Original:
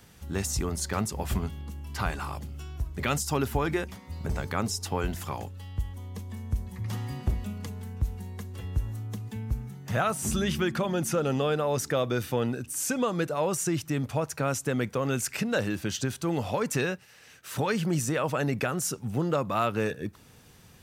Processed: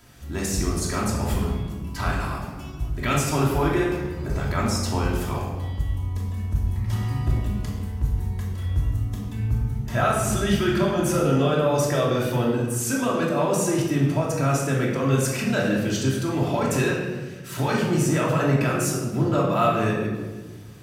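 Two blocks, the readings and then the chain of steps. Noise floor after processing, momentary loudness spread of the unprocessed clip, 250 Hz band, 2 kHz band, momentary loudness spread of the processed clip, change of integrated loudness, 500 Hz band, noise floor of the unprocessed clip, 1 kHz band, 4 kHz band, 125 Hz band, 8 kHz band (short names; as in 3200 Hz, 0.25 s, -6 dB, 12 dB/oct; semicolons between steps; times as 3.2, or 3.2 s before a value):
-36 dBFS, 10 LU, +7.0 dB, +5.0 dB, 8 LU, +6.0 dB, +5.5 dB, -54 dBFS, +5.5 dB, +4.0 dB, +8.0 dB, +3.0 dB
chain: shoebox room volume 1000 m³, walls mixed, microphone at 2.9 m; gain -1 dB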